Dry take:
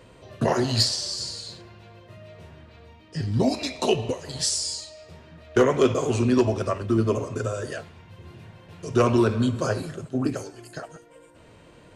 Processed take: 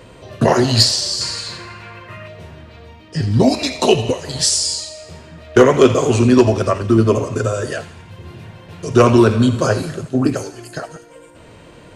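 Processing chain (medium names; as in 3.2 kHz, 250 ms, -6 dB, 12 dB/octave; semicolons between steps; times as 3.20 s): 1.21–2.28 s: high-order bell 1.6 kHz +10.5 dB; on a send: feedback echo behind a high-pass 84 ms, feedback 55%, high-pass 2.1 kHz, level -12.5 dB; on the sum: trim +9 dB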